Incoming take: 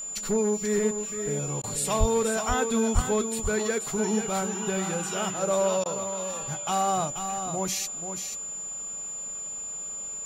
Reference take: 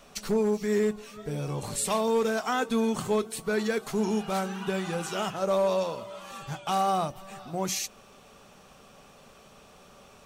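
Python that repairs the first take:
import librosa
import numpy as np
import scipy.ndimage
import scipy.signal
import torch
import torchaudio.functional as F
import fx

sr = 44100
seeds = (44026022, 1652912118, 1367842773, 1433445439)

y = fx.notch(x, sr, hz=7100.0, q=30.0)
y = fx.highpass(y, sr, hz=140.0, slope=24, at=(1.99, 2.11), fade=0.02)
y = fx.highpass(y, sr, hz=140.0, slope=24, at=(2.94, 3.06), fade=0.02)
y = fx.fix_interpolate(y, sr, at_s=(1.62, 5.84), length_ms=15.0)
y = fx.fix_echo_inverse(y, sr, delay_ms=485, level_db=-8.0)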